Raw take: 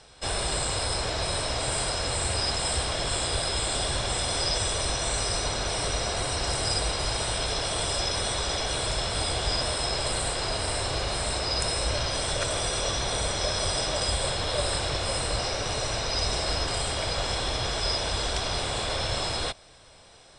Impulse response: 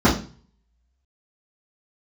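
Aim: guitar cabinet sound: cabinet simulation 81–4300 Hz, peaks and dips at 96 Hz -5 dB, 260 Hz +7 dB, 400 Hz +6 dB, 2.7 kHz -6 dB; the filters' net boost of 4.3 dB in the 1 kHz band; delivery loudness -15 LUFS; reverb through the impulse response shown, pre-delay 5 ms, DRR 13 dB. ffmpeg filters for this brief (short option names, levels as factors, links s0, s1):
-filter_complex "[0:a]equalizer=f=1000:t=o:g=5.5,asplit=2[s0][s1];[1:a]atrim=start_sample=2205,adelay=5[s2];[s1][s2]afir=irnorm=-1:irlink=0,volume=0.0188[s3];[s0][s3]amix=inputs=2:normalize=0,highpass=81,equalizer=f=96:t=q:w=4:g=-5,equalizer=f=260:t=q:w=4:g=7,equalizer=f=400:t=q:w=4:g=6,equalizer=f=2700:t=q:w=4:g=-6,lowpass=f=4300:w=0.5412,lowpass=f=4300:w=1.3066,volume=4.22"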